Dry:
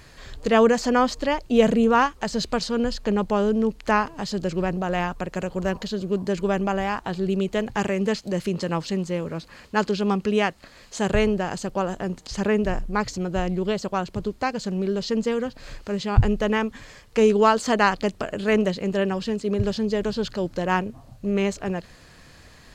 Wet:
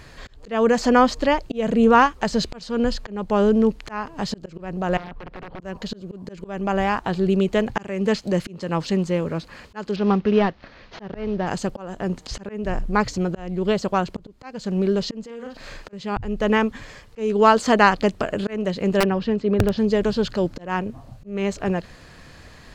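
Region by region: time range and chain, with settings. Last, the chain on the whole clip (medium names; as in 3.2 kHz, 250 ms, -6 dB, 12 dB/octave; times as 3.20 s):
4.97–5.61 s: compression 10:1, threshold -33 dBFS + integer overflow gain 31 dB + distance through air 330 m
9.96–11.47 s: CVSD coder 32 kbps + distance through air 160 m
15.25–15.93 s: bass shelf 230 Hz -8.5 dB + doubling 43 ms -3.5 dB + compression 4:1, threshold -36 dBFS
19.00–19.78 s: distance through air 180 m + integer overflow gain 14 dB
whole clip: treble shelf 5 kHz -6.5 dB; slow attack 362 ms; trim +4.5 dB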